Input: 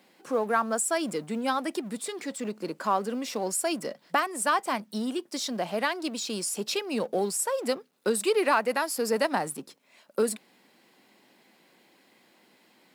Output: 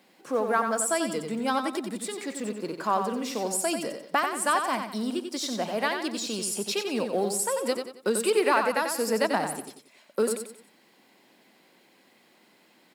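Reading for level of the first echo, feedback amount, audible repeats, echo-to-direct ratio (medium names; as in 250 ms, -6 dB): -6.5 dB, 37%, 4, -6.0 dB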